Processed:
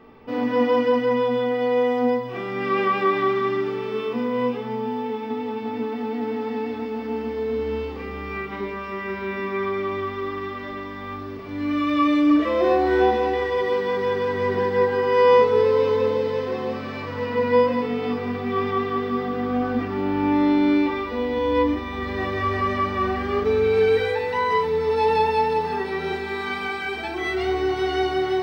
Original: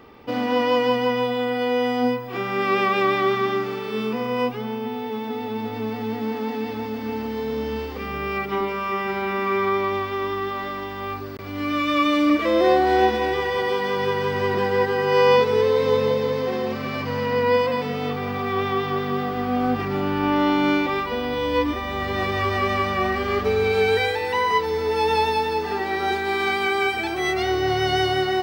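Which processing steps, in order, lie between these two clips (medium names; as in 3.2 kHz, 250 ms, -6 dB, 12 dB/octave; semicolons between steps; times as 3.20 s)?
treble shelf 3.6 kHz -10 dB; feedback echo behind a high-pass 521 ms, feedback 71%, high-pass 3.9 kHz, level -7 dB; simulated room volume 230 m³, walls furnished, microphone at 1.5 m; trim -3.5 dB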